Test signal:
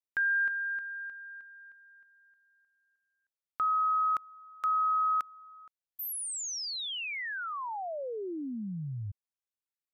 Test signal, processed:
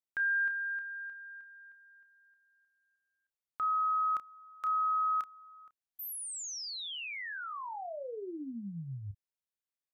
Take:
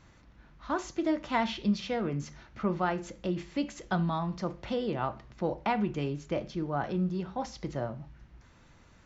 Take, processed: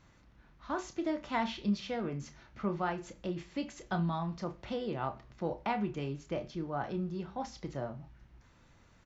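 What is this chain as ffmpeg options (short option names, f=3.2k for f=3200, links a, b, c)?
-filter_complex "[0:a]asplit=2[a][b];[b]adelay=30,volume=-10dB[c];[a][c]amix=inputs=2:normalize=0,volume=-4.5dB"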